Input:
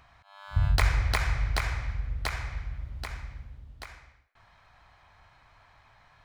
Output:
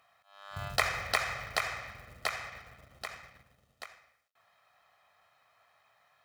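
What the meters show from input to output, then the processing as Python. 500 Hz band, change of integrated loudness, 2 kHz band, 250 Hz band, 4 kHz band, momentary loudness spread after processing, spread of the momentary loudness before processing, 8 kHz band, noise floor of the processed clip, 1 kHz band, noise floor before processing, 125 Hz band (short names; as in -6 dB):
+1.5 dB, -4.0 dB, 0.0 dB, -9.0 dB, 0.0 dB, 19 LU, 21 LU, +0.5 dB, -72 dBFS, 0.0 dB, -61 dBFS, -17.5 dB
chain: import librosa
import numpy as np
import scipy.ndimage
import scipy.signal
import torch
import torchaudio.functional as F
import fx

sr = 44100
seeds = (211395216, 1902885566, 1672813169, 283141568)

y = fx.law_mismatch(x, sr, coded='A')
y = scipy.signal.sosfilt(scipy.signal.butter(2, 280.0, 'highpass', fs=sr, output='sos'), y)
y = y + 0.53 * np.pad(y, (int(1.6 * sr / 1000.0), 0))[:len(y)]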